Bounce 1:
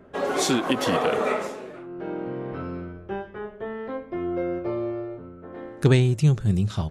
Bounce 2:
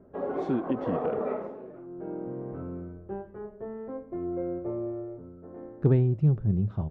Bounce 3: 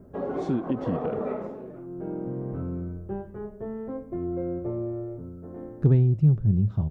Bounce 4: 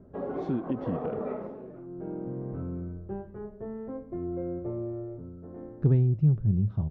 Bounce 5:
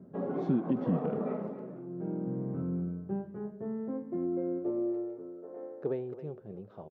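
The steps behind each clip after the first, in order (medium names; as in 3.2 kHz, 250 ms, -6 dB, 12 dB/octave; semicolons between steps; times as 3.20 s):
Bessel low-pass 650 Hz, order 2; trim -3.5 dB
tone controls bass +8 dB, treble +11 dB; in parallel at +1 dB: compression, threshold -30 dBFS, peak gain reduction 17.5 dB; on the sum: trim -5 dB
distance through air 160 m; trim -3 dB
high-pass sweep 170 Hz -> 490 Hz, 3.73–5.60 s; speakerphone echo 270 ms, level -12 dB; trim -2.5 dB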